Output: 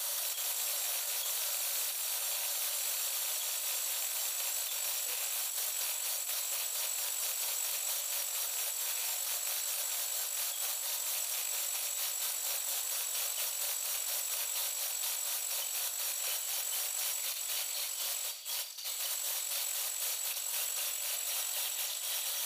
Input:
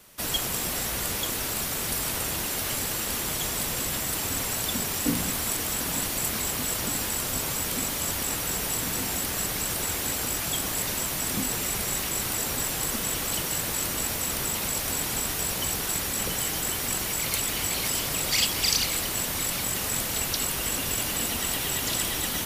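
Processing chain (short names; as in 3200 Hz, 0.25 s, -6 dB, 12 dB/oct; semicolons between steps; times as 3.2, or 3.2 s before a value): rattling part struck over -36 dBFS, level -21 dBFS; Chebyshev high-pass 560 Hz, order 4; resonant high shelf 3000 Hz +7 dB, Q 1.5; notch 5100 Hz, Q 11; negative-ratio compressor -32 dBFS, ratio -0.5; limiter -25.5 dBFS, peak gain reduction 8.5 dB; non-linear reverb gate 0.19 s falling, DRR 5 dB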